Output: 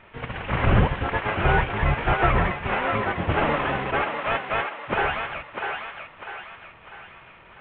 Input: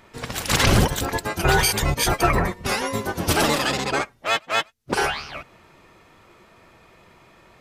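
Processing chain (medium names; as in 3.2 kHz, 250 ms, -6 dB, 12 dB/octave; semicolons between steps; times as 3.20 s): CVSD coder 16 kbps; peaking EQ 300 Hz -5.5 dB 1.4 oct; thinning echo 648 ms, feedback 50%, high-pass 570 Hz, level -4 dB; trim +2 dB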